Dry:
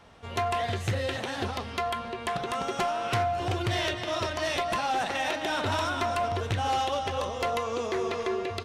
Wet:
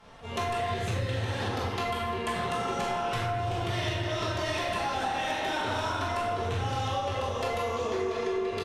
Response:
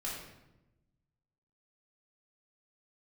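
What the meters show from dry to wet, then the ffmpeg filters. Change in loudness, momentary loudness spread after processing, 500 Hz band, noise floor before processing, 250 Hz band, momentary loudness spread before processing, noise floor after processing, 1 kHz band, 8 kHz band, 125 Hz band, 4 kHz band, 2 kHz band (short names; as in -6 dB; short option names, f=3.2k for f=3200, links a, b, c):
-1.0 dB, 1 LU, -1.0 dB, -38 dBFS, -0.5 dB, 4 LU, -34 dBFS, -1.5 dB, -2.0 dB, +1.5 dB, -2.0 dB, -1.5 dB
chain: -filter_complex "[0:a]aresample=32000,aresample=44100[a];[1:a]atrim=start_sample=2205,asetrate=30870,aresample=44100[b];[a][b]afir=irnorm=-1:irlink=0,acompressor=threshold=-27dB:ratio=6"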